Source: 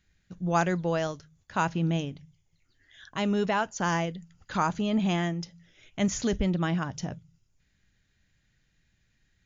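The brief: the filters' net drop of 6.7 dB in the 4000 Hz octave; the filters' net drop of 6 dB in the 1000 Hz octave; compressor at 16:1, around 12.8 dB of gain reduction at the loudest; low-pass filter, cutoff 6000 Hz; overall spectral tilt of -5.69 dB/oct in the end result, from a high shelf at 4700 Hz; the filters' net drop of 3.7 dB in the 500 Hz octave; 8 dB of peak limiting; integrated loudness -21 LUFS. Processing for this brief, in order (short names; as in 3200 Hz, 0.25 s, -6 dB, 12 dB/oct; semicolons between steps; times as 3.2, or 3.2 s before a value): LPF 6000 Hz; bell 500 Hz -3 dB; bell 1000 Hz -6 dB; bell 4000 Hz -4.5 dB; high shelf 4700 Hz -9 dB; compressor 16:1, threshold -35 dBFS; gain +22.5 dB; limiter -11 dBFS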